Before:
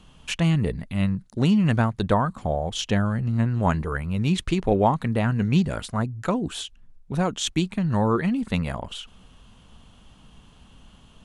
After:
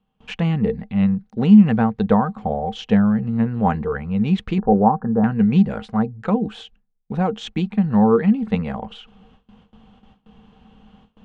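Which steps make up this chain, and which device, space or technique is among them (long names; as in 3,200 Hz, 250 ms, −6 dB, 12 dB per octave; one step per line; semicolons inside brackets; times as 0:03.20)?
inside a cardboard box (low-pass filter 2,800 Hz 12 dB per octave; hollow resonant body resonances 210/460/770 Hz, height 15 dB, ringing for 95 ms)
noise gate with hold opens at −38 dBFS
0:04.58–0:05.24: Chebyshev low-pass filter 1,700 Hz, order 8
low-shelf EQ 450 Hz −4 dB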